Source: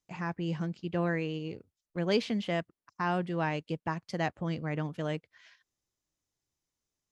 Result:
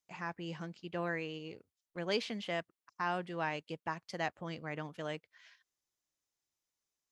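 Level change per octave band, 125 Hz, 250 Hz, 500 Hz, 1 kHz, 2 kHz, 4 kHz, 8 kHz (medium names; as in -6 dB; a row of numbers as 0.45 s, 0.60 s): -11.0 dB, -9.5 dB, -5.5 dB, -3.5 dB, -2.5 dB, -2.0 dB, no reading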